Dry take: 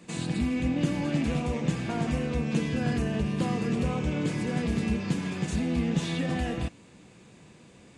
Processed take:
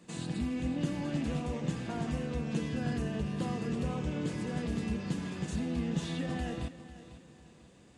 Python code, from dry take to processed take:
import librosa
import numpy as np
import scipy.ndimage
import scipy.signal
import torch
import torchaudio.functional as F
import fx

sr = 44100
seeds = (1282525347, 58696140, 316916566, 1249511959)

y = fx.peak_eq(x, sr, hz=2300.0, db=-6.5, octaves=0.22)
y = fx.echo_feedback(y, sr, ms=497, feedback_pct=36, wet_db=-15)
y = y * 10.0 ** (-6.0 / 20.0)